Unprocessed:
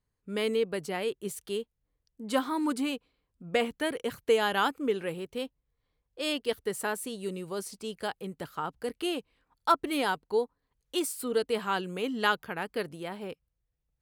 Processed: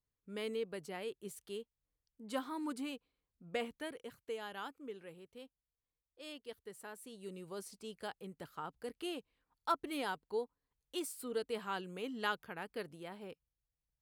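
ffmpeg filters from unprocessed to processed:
-af "volume=-3dB,afade=t=out:st=3.65:d=0.53:silence=0.446684,afade=t=in:st=6.91:d=0.57:silence=0.398107"

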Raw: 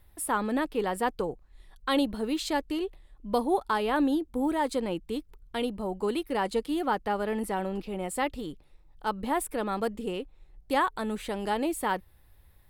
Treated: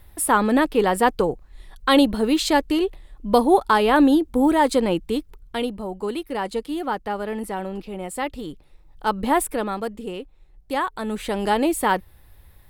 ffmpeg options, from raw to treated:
-af "volume=24dB,afade=t=out:st=4.95:d=0.92:silence=0.398107,afade=t=in:st=8.22:d=1.14:silence=0.446684,afade=t=out:st=9.36:d=0.45:silence=0.421697,afade=t=in:st=10.92:d=0.48:silence=0.446684"

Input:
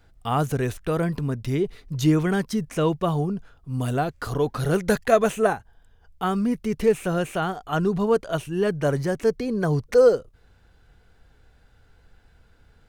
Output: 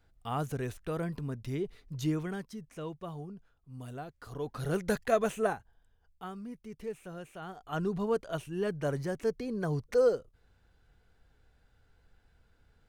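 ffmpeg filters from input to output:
-af "volume=8.5dB,afade=t=out:st=1.95:d=0.6:silence=0.421697,afade=t=in:st=4.25:d=0.51:silence=0.354813,afade=t=out:st=5.52:d=0.84:silence=0.298538,afade=t=in:st=7.39:d=0.41:silence=0.316228"

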